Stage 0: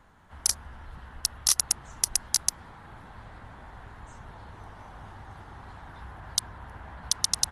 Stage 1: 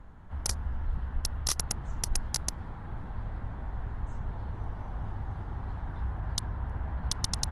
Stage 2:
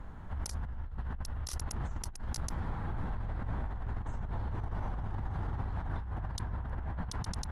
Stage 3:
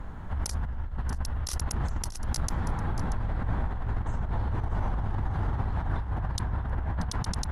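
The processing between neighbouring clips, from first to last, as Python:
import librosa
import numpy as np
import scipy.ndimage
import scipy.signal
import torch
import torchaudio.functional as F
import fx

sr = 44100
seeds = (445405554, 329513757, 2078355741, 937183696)

y1 = fx.tilt_eq(x, sr, slope=-3.0)
y2 = fx.over_compress(y1, sr, threshold_db=-37.0, ratio=-1.0)
y2 = y2 * 10.0 ** (1.0 / 20.0)
y3 = y2 + 10.0 ** (-13.0 / 20.0) * np.pad(y2, (int(634 * sr / 1000.0), 0))[:len(y2)]
y3 = y3 * 10.0 ** (6.5 / 20.0)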